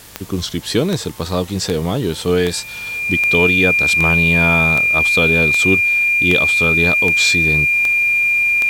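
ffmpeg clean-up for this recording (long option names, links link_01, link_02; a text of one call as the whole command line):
ffmpeg -i in.wav -af "adeclick=threshold=4,bandreject=frequency=51.6:width_type=h:width=4,bandreject=frequency=103.2:width_type=h:width=4,bandreject=frequency=154.8:width_type=h:width=4,bandreject=frequency=206.4:width_type=h:width=4,bandreject=frequency=2400:width=30,afwtdn=0.01" out.wav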